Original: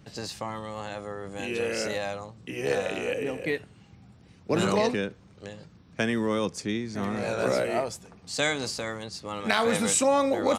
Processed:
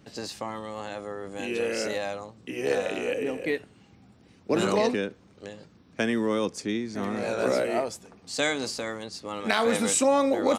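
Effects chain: FFT filter 160 Hz 0 dB, 250 Hz +8 dB, 1 kHz +5 dB; trim -5.5 dB

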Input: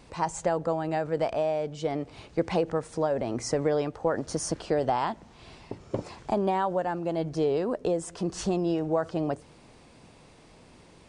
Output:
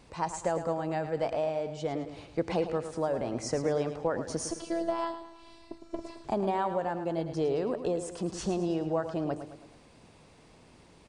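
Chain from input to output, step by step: 4.51–6.24 s: robot voice 335 Hz; on a send: feedback delay 108 ms, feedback 47%, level -10 dB; on the sum: trim -3.5 dB

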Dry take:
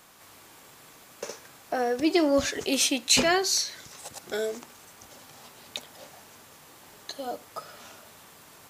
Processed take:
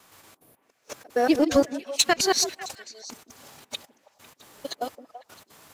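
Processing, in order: time reversed locally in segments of 176 ms; time-frequency box 0.56–0.95 s, 770–9100 Hz -13 dB; waveshaping leveller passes 1; trance gate "xxxxx.xx.....xx." 144 bpm -24 dB; time stretch by phase-locked vocoder 0.66×; repeats whose band climbs or falls 166 ms, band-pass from 290 Hz, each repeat 1.4 oct, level -8.5 dB; trim +1.5 dB

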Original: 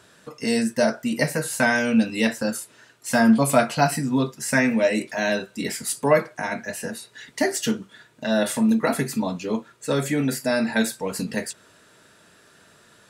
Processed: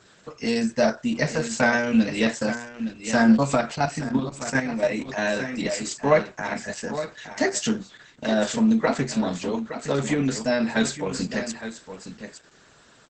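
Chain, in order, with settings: delay 866 ms -10.5 dB; 3.56–5.09 s: level held to a coarse grid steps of 9 dB; Opus 10 kbps 48 kHz

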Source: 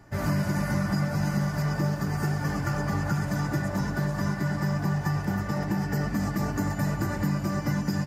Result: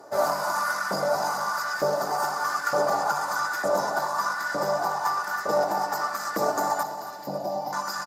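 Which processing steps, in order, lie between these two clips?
sine folder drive 4 dB, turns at -14.5 dBFS; high-order bell 2.3 kHz -12 dB 1.1 oct; LFO high-pass saw up 1.1 Hz 480–1700 Hz; 6.83–7.73 s: FFT filter 200 Hz 0 dB, 430 Hz -6 dB, 790 Hz +1 dB, 1.3 kHz -24 dB, 2.7 kHz -9 dB, 5 kHz -7 dB, 8.1 kHz -20 dB, 13 kHz -8 dB; feedback delay 275 ms, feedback 48%, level -13 dB

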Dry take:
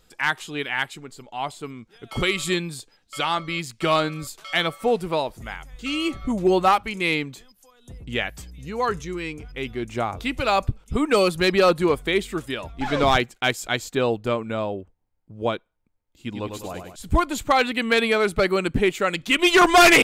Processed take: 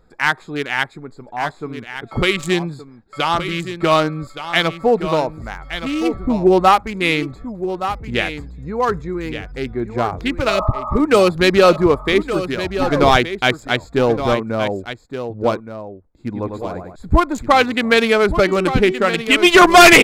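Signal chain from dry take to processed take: local Wiener filter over 15 samples; 10.51–10.96 s: spectral replace 590–1300 Hz both; 18.32–19.31 s: de-hum 378.6 Hz, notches 16; on a send: delay 1170 ms -10.5 dB; on the sum: trim +6.5 dB

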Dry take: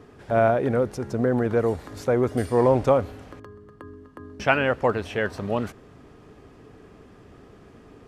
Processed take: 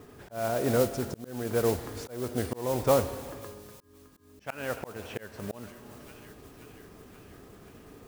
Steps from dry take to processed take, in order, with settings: Schroeder reverb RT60 1.8 s, combs from 25 ms, DRR 13.5 dB; modulation noise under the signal 14 dB; on a send: feedback echo behind a high-pass 530 ms, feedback 65%, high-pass 2.2 kHz, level -19.5 dB; on the sum: slow attack 486 ms; trim -2 dB

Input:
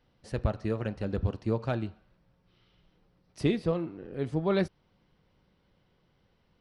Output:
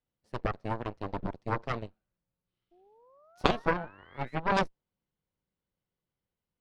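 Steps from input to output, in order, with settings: painted sound rise, 2.71–4.40 s, 340–2200 Hz -42 dBFS; dynamic bell 550 Hz, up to +7 dB, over -42 dBFS, Q 0.89; Chebyshev shaper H 2 -8 dB, 3 -9 dB, 4 -9 dB, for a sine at -9.5 dBFS; trim +2.5 dB

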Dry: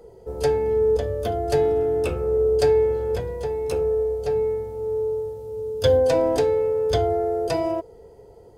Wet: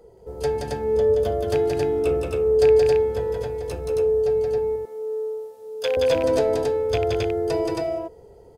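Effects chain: rattle on loud lows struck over -21 dBFS, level -15 dBFS; 4.58–5.97 s: high-pass 500 Hz 12 dB/octave; on a send: loudspeakers at several distances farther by 60 m -3 dB, 93 m -2 dB; on the sum: trim -3.5 dB

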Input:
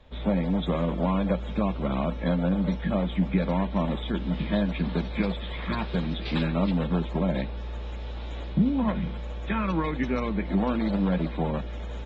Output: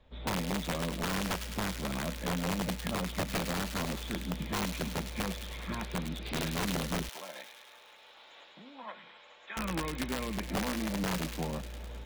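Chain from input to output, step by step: 7.09–9.57 s: high-pass 870 Hz 12 dB/octave; integer overflow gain 18 dB; feedback echo behind a high-pass 104 ms, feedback 72%, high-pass 2.3 kHz, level -4.5 dB; trim -8 dB

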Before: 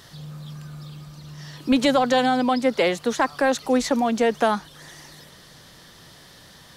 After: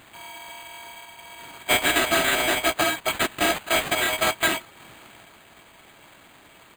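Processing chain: bit-reversed sample order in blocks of 256 samples; pitch shift -6 st; high-pass 83 Hz 12 dB/octave; careless resampling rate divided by 8×, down none, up hold; trim -2 dB

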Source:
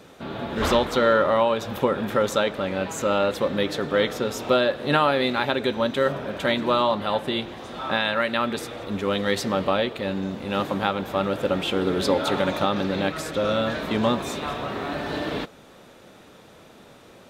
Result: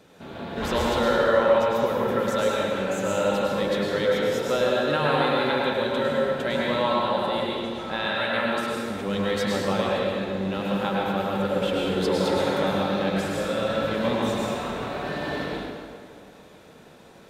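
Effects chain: band-stop 1.2 kHz, Q 14; plate-style reverb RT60 2.1 s, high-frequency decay 0.7×, pre-delay 90 ms, DRR -4.5 dB; trim -6.5 dB

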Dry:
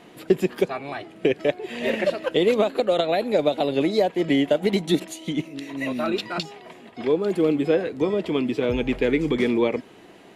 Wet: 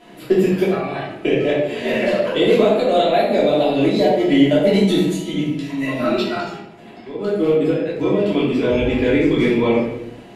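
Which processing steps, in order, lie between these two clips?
6.37–7.85 s: trance gate "x..x.x.x..x" 144 bpm -12 dB; reverberation RT60 0.85 s, pre-delay 3 ms, DRR -8.5 dB; trim -4 dB

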